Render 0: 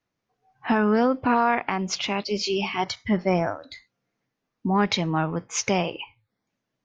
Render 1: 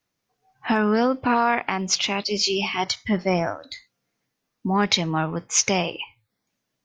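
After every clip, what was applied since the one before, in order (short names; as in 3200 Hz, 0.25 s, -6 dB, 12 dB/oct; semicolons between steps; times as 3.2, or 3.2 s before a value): high shelf 3600 Hz +10.5 dB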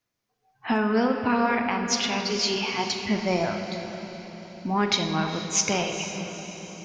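diffused feedback echo 0.455 s, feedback 54%, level -12 dB; reverb RT60 2.9 s, pre-delay 8 ms, DRR 4 dB; gain -4 dB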